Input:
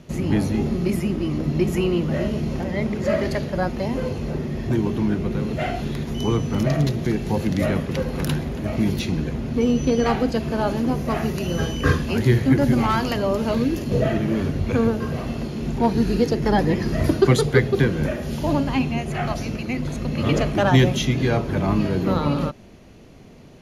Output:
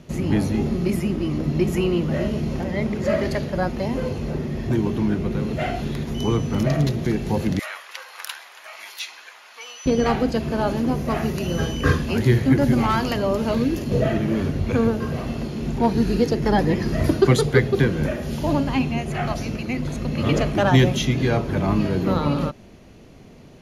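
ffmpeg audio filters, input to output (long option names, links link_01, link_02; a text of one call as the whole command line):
ffmpeg -i in.wav -filter_complex "[0:a]asettb=1/sr,asplit=3[link_01][link_02][link_03];[link_01]atrim=end=7.594[link_04];[link_02]atrim=start=7.59:end=9.86,asetpts=PTS-STARTPTS,afade=type=in:duration=0.004:curve=qsin,afade=type=out:start_time=2.266:duration=0.004:curve=qsin,highpass=frequency=980:width=0.5412,highpass=frequency=980:width=1.3066[link_05];[link_03]atrim=start=9.856[link_06];[link_04][link_05]acrossfade=duration=0.004:curve1=hsin:curve2=qsin[link_07];[link_07][link_06]acrossfade=duration=0.004:curve1=qsin:curve2=hsin" out.wav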